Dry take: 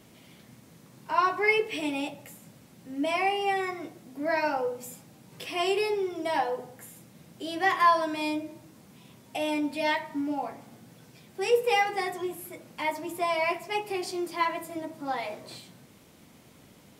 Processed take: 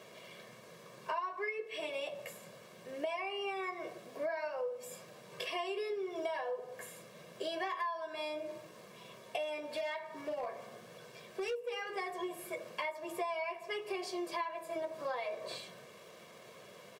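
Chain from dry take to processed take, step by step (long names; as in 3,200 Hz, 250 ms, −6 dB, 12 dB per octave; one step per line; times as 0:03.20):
comb filter 1.8 ms, depth 89%
surface crackle 450 per second −50 dBFS
high-pass filter 300 Hz 12 dB per octave
downward compressor 16 to 1, threshold −37 dBFS, peak gain reduction 25.5 dB
low-pass filter 3,100 Hz 6 dB per octave
0:09.43–0:11.77: hard clipping −35.5 dBFS, distortion −26 dB
level +3 dB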